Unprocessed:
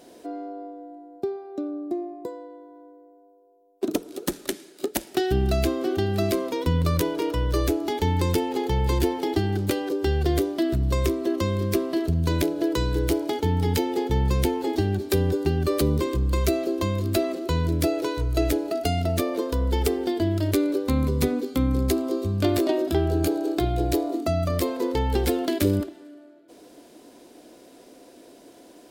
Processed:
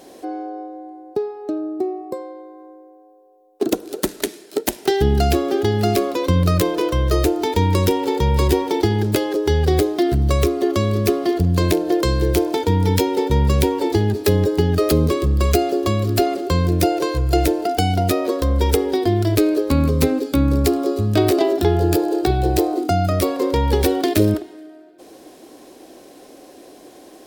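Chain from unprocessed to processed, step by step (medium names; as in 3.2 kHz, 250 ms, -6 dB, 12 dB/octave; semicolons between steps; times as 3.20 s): wide varispeed 1.06×; trim +6 dB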